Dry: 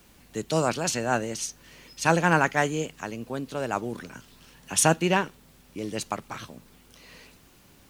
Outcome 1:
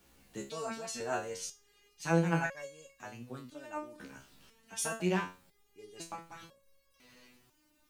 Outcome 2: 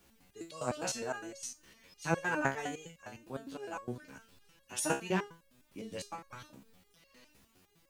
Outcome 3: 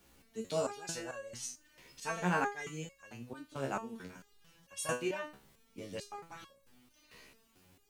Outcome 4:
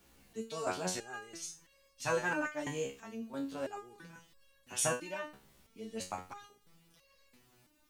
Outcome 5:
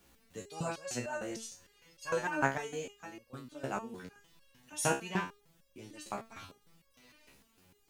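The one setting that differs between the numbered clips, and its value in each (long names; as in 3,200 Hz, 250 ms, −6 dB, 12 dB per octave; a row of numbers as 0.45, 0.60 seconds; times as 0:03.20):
step-sequenced resonator, speed: 2, 9.8, 4.5, 3, 6.6 Hertz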